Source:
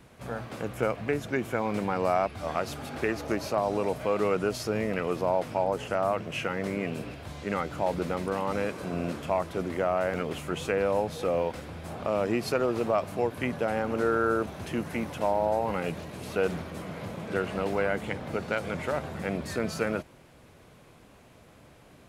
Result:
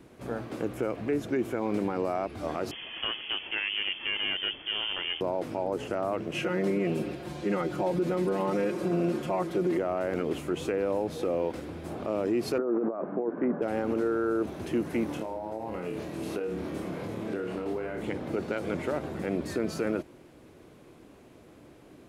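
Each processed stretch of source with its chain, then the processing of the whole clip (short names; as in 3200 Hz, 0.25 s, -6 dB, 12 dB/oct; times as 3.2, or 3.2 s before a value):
2.71–5.21 self-modulated delay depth 0.4 ms + inverted band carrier 3300 Hz
6.34–9.78 HPF 45 Hz + comb 5.6 ms, depth 95%
12.58–13.62 Chebyshev band-pass 180–1500 Hz, order 3 + negative-ratio compressor -31 dBFS
15.06–18.01 flutter echo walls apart 4.7 m, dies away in 0.35 s + compressor 12:1, threshold -31 dBFS
whole clip: bell 330 Hz +11.5 dB 0.96 oct; limiter -16.5 dBFS; gain -3 dB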